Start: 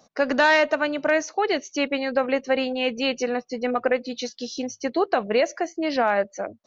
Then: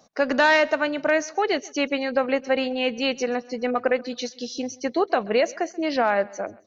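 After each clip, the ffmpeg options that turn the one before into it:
ffmpeg -i in.wav -af "aecho=1:1:133|266|399:0.075|0.0315|0.0132" out.wav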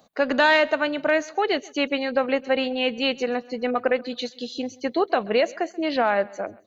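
ffmpeg -i in.wav -af "aexciter=amount=1:drive=4.2:freq=3000" out.wav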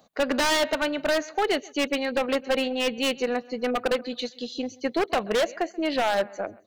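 ffmpeg -i in.wav -af "aeval=exprs='0.398*(cos(1*acos(clip(val(0)/0.398,-1,1)))-cos(1*PI/2))+0.00708*(cos(6*acos(clip(val(0)/0.398,-1,1)))-cos(6*PI/2))+0.00891*(cos(7*acos(clip(val(0)/0.398,-1,1)))-cos(7*PI/2))':channel_layout=same,aeval=exprs='0.15*(abs(mod(val(0)/0.15+3,4)-2)-1)':channel_layout=same" out.wav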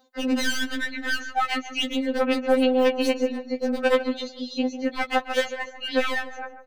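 ffmpeg -i in.wav -filter_complex "[0:a]acrossover=split=360|1400|2600[link_01][link_02][link_03][link_04];[link_03]dynaudnorm=framelen=540:gausssize=3:maxgain=9dB[link_05];[link_01][link_02][link_05][link_04]amix=inputs=4:normalize=0,asplit=2[link_06][link_07];[link_07]adelay=146,lowpass=frequency=1400:poles=1,volume=-10dB,asplit=2[link_08][link_09];[link_09]adelay=146,lowpass=frequency=1400:poles=1,volume=0.42,asplit=2[link_10][link_11];[link_11]adelay=146,lowpass=frequency=1400:poles=1,volume=0.42,asplit=2[link_12][link_13];[link_13]adelay=146,lowpass=frequency=1400:poles=1,volume=0.42[link_14];[link_06][link_08][link_10][link_12][link_14]amix=inputs=5:normalize=0,afftfilt=real='re*3.46*eq(mod(b,12),0)':imag='im*3.46*eq(mod(b,12),0)':win_size=2048:overlap=0.75" out.wav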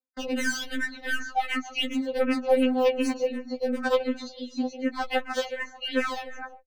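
ffmpeg -i in.wav -filter_complex "[0:a]agate=range=-32dB:threshold=-41dB:ratio=16:detection=peak,adynamicequalizer=threshold=0.00398:dfrequency=3300:dqfactor=4:tfrequency=3300:tqfactor=4:attack=5:release=100:ratio=0.375:range=2:mode=cutabove:tftype=bell,asplit=2[link_01][link_02];[link_02]afreqshift=-2.7[link_03];[link_01][link_03]amix=inputs=2:normalize=1" out.wav

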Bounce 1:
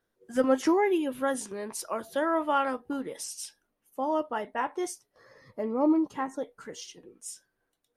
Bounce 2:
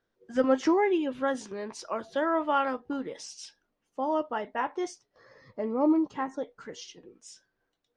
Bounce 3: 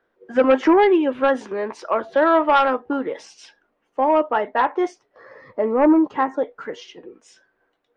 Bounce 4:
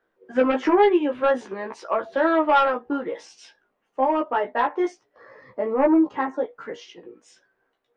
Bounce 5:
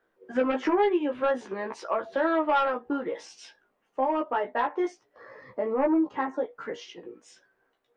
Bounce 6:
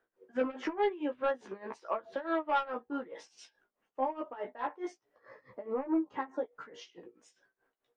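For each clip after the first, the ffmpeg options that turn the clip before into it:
ffmpeg -i in.wav -af "lowpass=frequency=6100:width=0.5412,lowpass=frequency=6100:width=1.3066" out.wav
ffmpeg -i in.wav -filter_complex "[0:a]acrossover=split=280 2700:gain=0.251 1 0.126[link_01][link_02][link_03];[link_01][link_02][link_03]amix=inputs=3:normalize=0,aeval=exprs='0.2*sin(PI/2*1.58*val(0)/0.2)':channel_layout=same,volume=5dB" out.wav
ffmpeg -i in.wav -af "flanger=delay=15:depth=2.2:speed=0.51" out.wav
ffmpeg -i in.wav -af "acompressor=threshold=-31dB:ratio=1.5" out.wav
ffmpeg -i in.wav -af "tremolo=f=4.7:d=0.88,volume=-4.5dB" out.wav

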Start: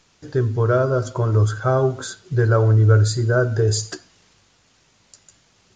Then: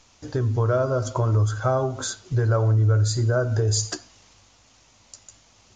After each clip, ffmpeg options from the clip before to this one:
ffmpeg -i in.wav -af "highshelf=frequency=2900:gain=-8.5,acompressor=threshold=-21dB:ratio=3,equalizer=frequency=160:width_type=o:width=0.67:gain=-11,equalizer=frequency=400:width_type=o:width=0.67:gain=-8,equalizer=frequency=1600:width_type=o:width=0.67:gain=-6,equalizer=frequency=6300:width_type=o:width=0.67:gain=6,volume=6dB" out.wav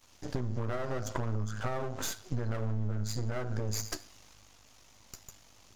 ffmpeg -i in.wav -af "acompressor=threshold=-27dB:ratio=6,aeval=exprs='max(val(0),0)':channel_layout=same" out.wav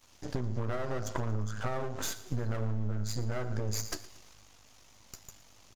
ffmpeg -i in.wav -af "aecho=1:1:115|230|345|460:0.119|0.0594|0.0297|0.0149" out.wav

